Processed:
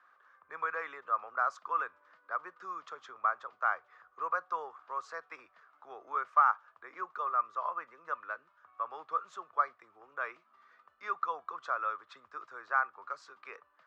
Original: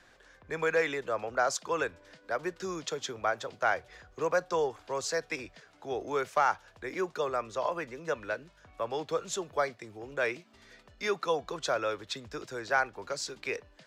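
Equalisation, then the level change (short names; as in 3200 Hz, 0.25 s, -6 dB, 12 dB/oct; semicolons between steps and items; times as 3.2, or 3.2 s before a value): band-pass 1200 Hz, Q 8.2; +8.5 dB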